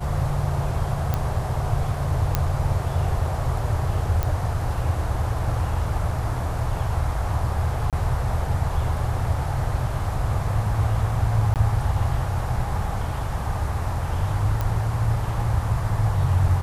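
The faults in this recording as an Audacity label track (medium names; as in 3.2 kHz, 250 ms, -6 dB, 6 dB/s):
1.140000	1.140000	pop -11 dBFS
2.350000	2.350000	pop -6 dBFS
4.230000	4.230000	pop
7.900000	7.930000	dropout 27 ms
11.540000	11.560000	dropout 18 ms
14.610000	14.610000	pop -13 dBFS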